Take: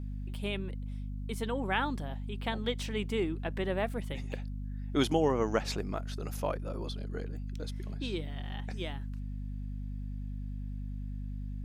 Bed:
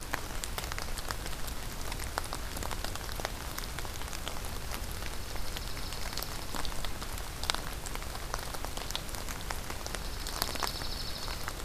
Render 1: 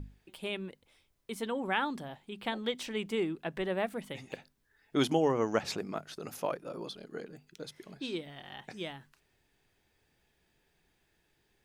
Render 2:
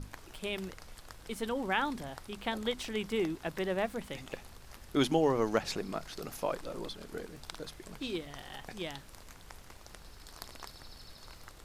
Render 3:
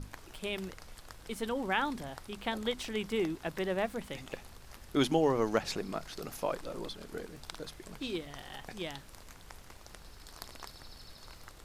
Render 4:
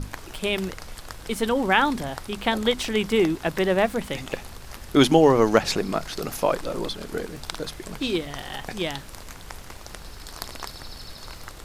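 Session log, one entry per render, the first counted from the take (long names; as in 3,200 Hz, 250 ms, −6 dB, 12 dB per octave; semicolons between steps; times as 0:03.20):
mains-hum notches 50/100/150/200/250 Hz
mix in bed −14 dB
no processing that can be heard
level +11.5 dB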